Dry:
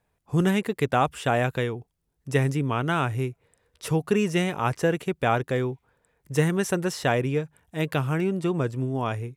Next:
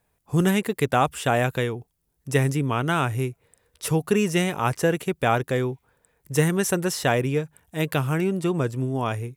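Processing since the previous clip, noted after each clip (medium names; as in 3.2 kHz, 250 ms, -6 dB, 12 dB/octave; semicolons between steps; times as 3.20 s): treble shelf 8.1 kHz +10.5 dB; trim +1.5 dB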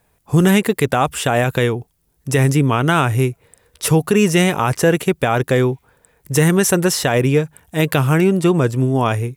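loudness maximiser +13.5 dB; trim -4 dB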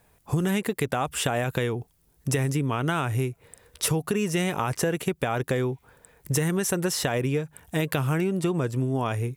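compression 6:1, threshold -23 dBFS, peak gain reduction 13 dB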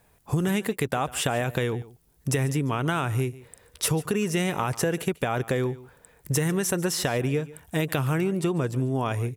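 delay 144 ms -19 dB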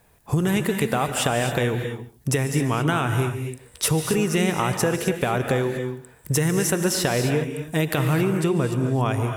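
gated-style reverb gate 290 ms rising, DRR 6 dB; trim +3 dB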